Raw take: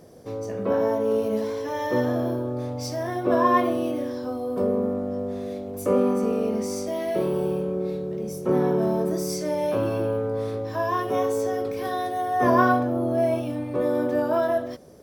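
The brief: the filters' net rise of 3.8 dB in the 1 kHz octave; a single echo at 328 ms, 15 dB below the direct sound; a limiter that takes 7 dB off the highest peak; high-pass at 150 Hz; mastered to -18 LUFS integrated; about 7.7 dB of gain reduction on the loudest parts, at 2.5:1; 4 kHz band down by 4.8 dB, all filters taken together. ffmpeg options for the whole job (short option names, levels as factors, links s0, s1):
-af "highpass=150,equalizer=f=1000:t=o:g=5,equalizer=f=4000:t=o:g=-7,acompressor=threshold=0.0708:ratio=2.5,alimiter=limit=0.112:level=0:latency=1,aecho=1:1:328:0.178,volume=3.16"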